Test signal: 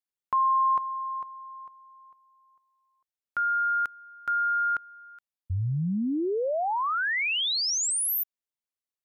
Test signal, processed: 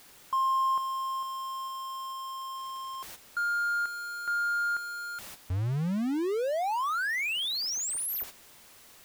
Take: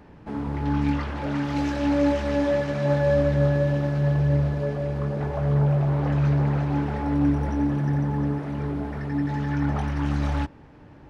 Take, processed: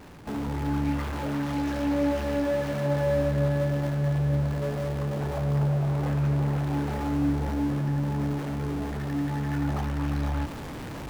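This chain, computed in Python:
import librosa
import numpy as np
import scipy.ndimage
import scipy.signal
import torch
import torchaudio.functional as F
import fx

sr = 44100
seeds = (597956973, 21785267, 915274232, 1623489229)

y = x + 0.5 * 10.0 ** (-26.0 / 20.0) * np.sign(x)
y = fx.high_shelf(y, sr, hz=2800.0, db=-4.0)
y = fx.gate_hold(y, sr, open_db=-27.0, close_db=-35.0, hold_ms=12.0, range_db=-10, attack_ms=2.5, release_ms=23.0)
y = y * librosa.db_to_amplitude(-5.5)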